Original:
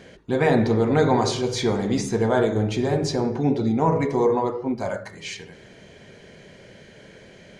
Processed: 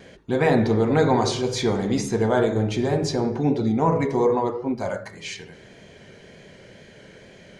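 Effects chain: wow and flutter 31 cents

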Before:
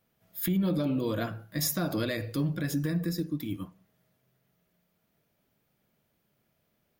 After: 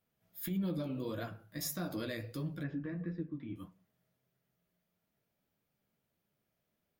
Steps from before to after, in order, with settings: 2.63–3.56 s: low-pass 2.5 kHz 24 dB/octave; flange 1.6 Hz, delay 9.9 ms, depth 8.2 ms, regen -38%; trim -5 dB

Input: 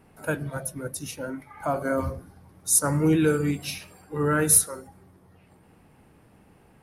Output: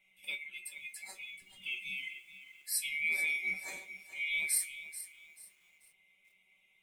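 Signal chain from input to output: split-band scrambler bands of 2 kHz; feedback comb 190 Hz, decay 0.17 s, harmonics all, mix 90%; bit-crushed delay 435 ms, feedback 35%, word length 9-bit, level -13 dB; trim -4.5 dB

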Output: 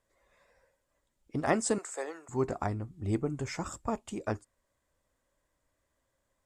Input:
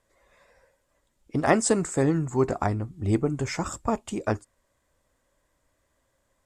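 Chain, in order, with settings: 1.78–2.29 s: high-pass 500 Hz 24 dB/octave; trim -7 dB

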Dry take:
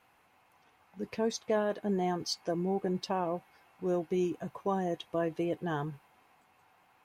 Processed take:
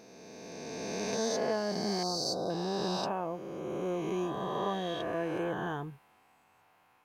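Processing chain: reverse spectral sustain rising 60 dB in 2.90 s; 2.03–2.50 s: Chebyshev band-stop 1.4–3.8 kHz, order 4; trim -4.5 dB

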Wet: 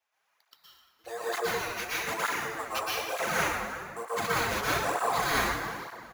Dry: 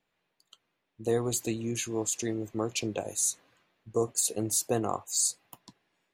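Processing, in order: high-pass 750 Hz 24 dB/octave; tilt EQ -2 dB/octave; in parallel at +2 dB: compression, threshold -33 dBFS, peak gain reduction 6 dB; on the sum: sample-rate reducer 8.5 kHz, jitter 0%; on a send: feedback delay 351 ms, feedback 27%, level -17.5 dB; on the sum: plate-style reverb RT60 1.9 s, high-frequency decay 0.5×, pre-delay 105 ms, DRR -8.5 dB; cancelling through-zero flanger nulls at 1.1 Hz, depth 7.2 ms; trim -3 dB

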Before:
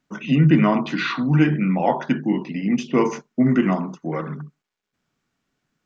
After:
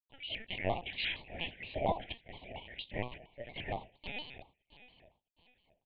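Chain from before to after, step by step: 3.96–4.41 s: sorted samples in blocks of 32 samples; elliptic high-pass 570 Hz, stop band 80 dB; tilt EQ +1.5 dB/octave; crossover distortion -44.5 dBFS; on a send: feedback delay 661 ms, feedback 34%, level -17 dB; on the sum: LPC vocoder at 8 kHz pitch kept; Butterworth band-stop 1.3 kHz, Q 0.69; vibrato with a chosen wave square 4.3 Hz, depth 160 cents; trim -4.5 dB

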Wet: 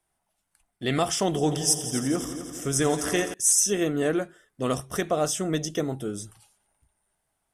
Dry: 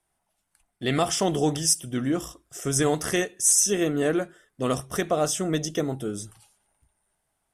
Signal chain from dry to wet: 1.26–3.34 s: multi-head delay 85 ms, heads all three, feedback 61%, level -15 dB; trim -1 dB

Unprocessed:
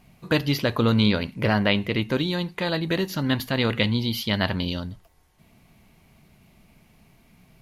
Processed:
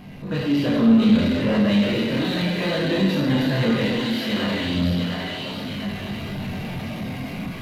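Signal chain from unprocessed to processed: spectral levelling over time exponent 0.6; level rider gain up to 12 dB; thinning echo 700 ms, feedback 45%, high-pass 540 Hz, level -4 dB; chorus 0.34 Hz, delay 20 ms, depth 3.7 ms; 1.60–2.67 s: treble shelf 6.1 kHz +7 dB; 3.86–4.75 s: high-pass 200 Hz 6 dB/octave; Schroeder reverb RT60 1.6 s, combs from 31 ms, DRR -2 dB; power-law waveshaper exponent 0.5; spectral contrast expander 1.5:1; trim -8 dB

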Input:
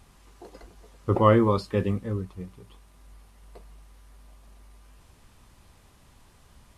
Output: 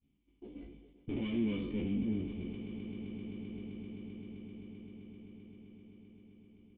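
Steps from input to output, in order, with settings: spectral sustain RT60 0.49 s; valve stage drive 32 dB, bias 0.4; cascade formant filter i; expander -54 dBFS; doubling 14 ms -4 dB; echo with a slow build-up 130 ms, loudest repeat 8, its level -17.5 dB; decay stretcher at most 49 dB/s; trim +8 dB

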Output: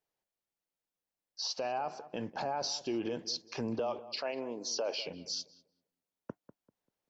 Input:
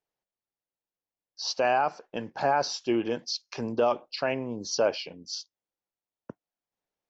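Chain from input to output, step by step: dynamic bell 1.6 kHz, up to -7 dB, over -42 dBFS, Q 1.4; 3.79–5.02 s: high-pass 390 Hz 12 dB/octave; peak limiter -26.5 dBFS, peak gain reduction 11 dB; on a send: filtered feedback delay 195 ms, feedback 28%, low-pass 1.5 kHz, level -14.5 dB

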